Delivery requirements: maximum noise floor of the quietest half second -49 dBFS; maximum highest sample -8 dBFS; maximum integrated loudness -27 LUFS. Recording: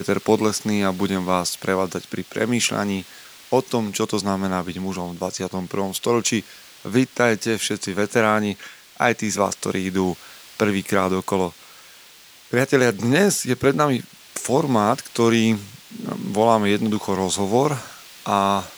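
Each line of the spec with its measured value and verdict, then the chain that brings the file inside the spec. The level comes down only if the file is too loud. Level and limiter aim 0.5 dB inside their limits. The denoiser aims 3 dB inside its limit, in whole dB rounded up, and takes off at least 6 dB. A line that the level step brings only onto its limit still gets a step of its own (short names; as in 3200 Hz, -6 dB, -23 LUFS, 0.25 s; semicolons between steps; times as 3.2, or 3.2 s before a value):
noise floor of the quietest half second -47 dBFS: fail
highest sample -3.0 dBFS: fail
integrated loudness -21.5 LUFS: fail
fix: gain -6 dB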